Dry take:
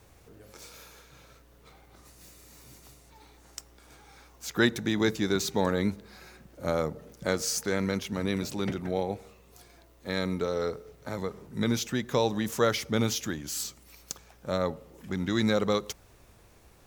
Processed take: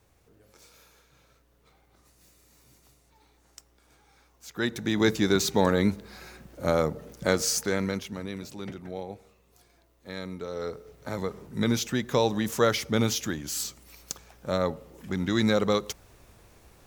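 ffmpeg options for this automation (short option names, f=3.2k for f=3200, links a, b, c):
-af "volume=13dB,afade=t=in:st=4.57:d=0.56:silence=0.266073,afade=t=out:st=7.42:d=0.86:silence=0.281838,afade=t=in:st=10.43:d=0.71:silence=0.354813"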